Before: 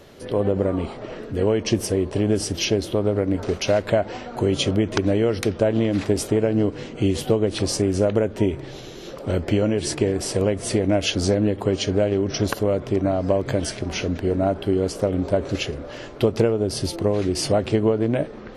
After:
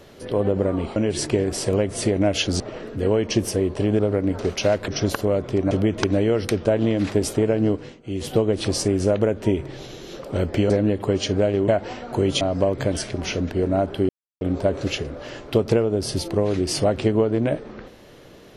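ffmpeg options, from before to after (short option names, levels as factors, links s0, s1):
-filter_complex "[0:a]asplit=13[s0][s1][s2][s3][s4][s5][s6][s7][s8][s9][s10][s11][s12];[s0]atrim=end=0.962[s13];[s1]atrim=start=9.638:end=11.282[s14];[s2]atrim=start=0.958:end=2.352[s15];[s3]atrim=start=3.028:end=3.922[s16];[s4]atrim=start=12.258:end=13.092[s17];[s5]atrim=start=4.648:end=6.96,asetpts=PTS-STARTPTS,afade=t=out:st=1.992:d=0.32:silence=0.11885[s18];[s6]atrim=start=6.96:end=6.97,asetpts=PTS-STARTPTS,volume=0.119[s19];[s7]atrim=start=6.97:end=9.642,asetpts=PTS-STARTPTS,afade=t=in:d=0.32:silence=0.11885[s20];[s8]atrim=start=11.278:end=12.262[s21];[s9]atrim=start=3.918:end=4.652[s22];[s10]atrim=start=13.088:end=14.77,asetpts=PTS-STARTPTS,afade=t=out:st=1.678:d=0.004:c=hsin[s23];[s11]atrim=start=14.77:end=15.09,asetpts=PTS-STARTPTS,volume=0[s24];[s12]atrim=start=15.09,asetpts=PTS-STARTPTS,afade=t=in:d=0.004:c=hsin[s25];[s13][s14]acrossfade=d=0.004:c1=hsin:c2=hsin[s26];[s26][s15]acrossfade=d=0.004:c1=hsin:c2=hsin[s27];[s27][s16]acrossfade=d=0.004:c1=hsin:c2=hsin[s28];[s28][s17]acrossfade=d=0.004:c1=hsin:c2=hsin[s29];[s18][s19][s20]concat=n=3:v=0:a=1[s30];[s29][s30]acrossfade=d=0.004:c1=hsin:c2=hsin[s31];[s31][s21]acrossfade=d=0.004:c1=hsin:c2=hsin[s32];[s32][s22]acrossfade=d=0.004:c1=hsin:c2=hsin[s33];[s23][s24][s25]concat=n=3:v=0:a=1[s34];[s33][s34]acrossfade=d=0.004:c1=hsin:c2=hsin"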